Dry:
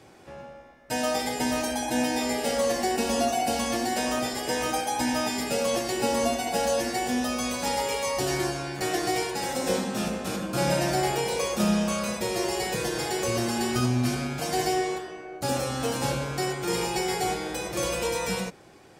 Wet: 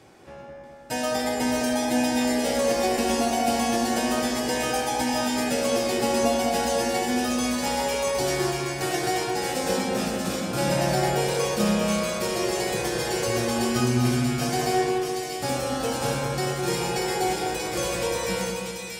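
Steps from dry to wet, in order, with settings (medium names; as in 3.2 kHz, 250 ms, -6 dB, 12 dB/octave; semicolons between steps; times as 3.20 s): two-band feedback delay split 1.9 kHz, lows 210 ms, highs 636 ms, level -4 dB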